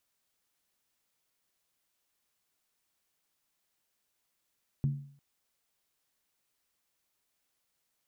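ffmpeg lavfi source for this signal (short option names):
-f lavfi -i "aevalsrc='0.0708*pow(10,-3*t/0.54)*sin(2*PI*141*t)+0.0188*pow(10,-3*t/0.428)*sin(2*PI*224.8*t)+0.00501*pow(10,-3*t/0.369)*sin(2*PI*301.2*t)+0.00133*pow(10,-3*t/0.356)*sin(2*PI*323.7*t)+0.000355*pow(10,-3*t/0.332)*sin(2*PI*374.1*t)':d=0.35:s=44100"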